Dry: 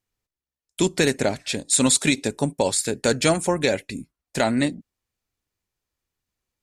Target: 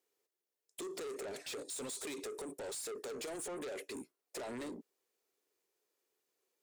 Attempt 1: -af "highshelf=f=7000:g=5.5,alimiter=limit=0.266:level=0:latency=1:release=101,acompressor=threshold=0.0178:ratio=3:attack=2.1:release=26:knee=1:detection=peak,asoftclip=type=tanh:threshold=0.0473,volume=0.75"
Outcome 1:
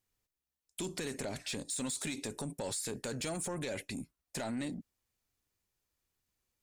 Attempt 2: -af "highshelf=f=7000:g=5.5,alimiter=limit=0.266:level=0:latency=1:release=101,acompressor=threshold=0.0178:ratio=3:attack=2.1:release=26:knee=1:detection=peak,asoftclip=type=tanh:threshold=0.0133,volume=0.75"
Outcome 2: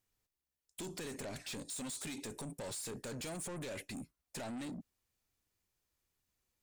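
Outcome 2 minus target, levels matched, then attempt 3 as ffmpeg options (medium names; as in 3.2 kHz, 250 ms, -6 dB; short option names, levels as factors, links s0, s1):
500 Hz band -4.0 dB
-af "highpass=f=410:t=q:w=4.3,highshelf=f=7000:g=5.5,alimiter=limit=0.266:level=0:latency=1:release=101,acompressor=threshold=0.0178:ratio=3:attack=2.1:release=26:knee=1:detection=peak,asoftclip=type=tanh:threshold=0.0133,volume=0.75"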